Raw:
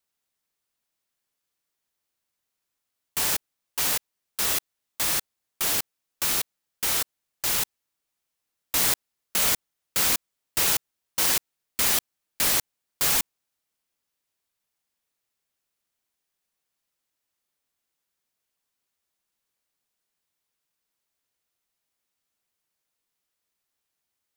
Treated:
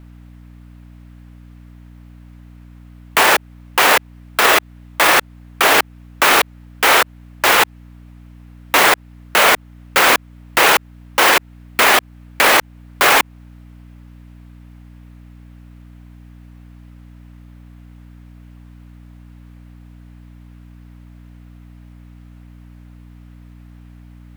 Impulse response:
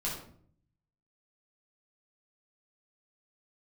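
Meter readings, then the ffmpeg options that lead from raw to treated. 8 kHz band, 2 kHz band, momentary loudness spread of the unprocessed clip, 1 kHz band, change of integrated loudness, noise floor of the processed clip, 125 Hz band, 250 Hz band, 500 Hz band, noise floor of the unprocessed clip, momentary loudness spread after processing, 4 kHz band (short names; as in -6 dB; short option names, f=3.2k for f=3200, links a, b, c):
+3.5 dB, +19.5 dB, 9 LU, +21.5 dB, +10.0 dB, -42 dBFS, +11.0 dB, +14.0 dB, +20.5 dB, -83 dBFS, 8 LU, +11.0 dB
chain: -filter_complex "[0:a]acrossover=split=340 2600:gain=0.112 1 0.112[a][b][c];[a][b][c]amix=inputs=3:normalize=0,aeval=exprs='val(0)+0.000316*(sin(2*PI*60*n/s)+sin(2*PI*2*60*n/s)/2+sin(2*PI*3*60*n/s)/3+sin(2*PI*4*60*n/s)/4+sin(2*PI*5*60*n/s)/5)':c=same,equalizer=f=64:w=1.5:g=-2.5,asplit=2[d][e];[e]acompressor=threshold=-41dB:ratio=6,volume=-3dB[f];[d][f]amix=inputs=2:normalize=0,alimiter=level_in=29dB:limit=-1dB:release=50:level=0:latency=1,volume=-1dB"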